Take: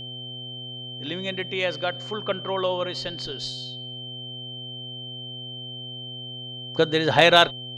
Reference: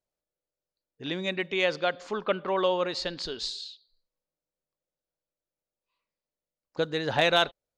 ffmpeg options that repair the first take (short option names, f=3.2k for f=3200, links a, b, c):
-af "bandreject=f=126:t=h:w=4,bandreject=f=252:t=h:w=4,bandreject=f=378:t=h:w=4,bandreject=f=504:t=h:w=4,bandreject=f=630:t=h:w=4,bandreject=f=756:t=h:w=4,bandreject=f=3.1k:w=30,asetnsamples=n=441:p=0,asendcmd='6.27 volume volume -7.5dB',volume=0dB"